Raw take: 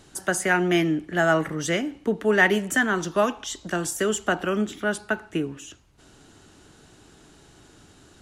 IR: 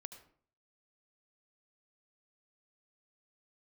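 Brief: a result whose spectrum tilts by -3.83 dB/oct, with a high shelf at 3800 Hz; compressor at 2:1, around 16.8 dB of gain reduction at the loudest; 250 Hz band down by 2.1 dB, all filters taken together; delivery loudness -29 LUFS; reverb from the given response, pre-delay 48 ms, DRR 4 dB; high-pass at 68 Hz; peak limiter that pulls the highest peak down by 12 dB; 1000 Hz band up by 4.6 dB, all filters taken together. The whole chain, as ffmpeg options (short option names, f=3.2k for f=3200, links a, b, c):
-filter_complex "[0:a]highpass=68,equalizer=f=250:t=o:g=-3.5,equalizer=f=1k:t=o:g=7,highshelf=f=3.8k:g=-4,acompressor=threshold=-45dB:ratio=2,alimiter=level_in=8dB:limit=-24dB:level=0:latency=1,volume=-8dB,asplit=2[a][b];[1:a]atrim=start_sample=2205,adelay=48[c];[b][c]afir=irnorm=-1:irlink=0,volume=1dB[d];[a][d]amix=inputs=2:normalize=0,volume=12.5dB"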